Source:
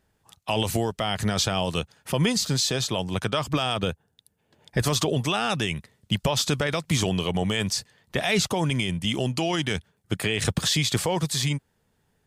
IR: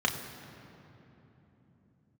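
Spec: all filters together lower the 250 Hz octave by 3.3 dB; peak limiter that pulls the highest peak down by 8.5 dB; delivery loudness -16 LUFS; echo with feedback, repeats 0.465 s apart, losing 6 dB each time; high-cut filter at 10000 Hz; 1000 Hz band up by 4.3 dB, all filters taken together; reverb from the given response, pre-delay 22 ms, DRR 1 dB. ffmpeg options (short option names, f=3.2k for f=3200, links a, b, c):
-filter_complex "[0:a]lowpass=10k,equalizer=f=250:t=o:g=-5.5,equalizer=f=1k:t=o:g=6,alimiter=limit=-18dB:level=0:latency=1,aecho=1:1:465|930|1395|1860|2325|2790:0.501|0.251|0.125|0.0626|0.0313|0.0157,asplit=2[a][b];[1:a]atrim=start_sample=2205,adelay=22[c];[b][c]afir=irnorm=-1:irlink=0,volume=-11dB[d];[a][d]amix=inputs=2:normalize=0,volume=9.5dB"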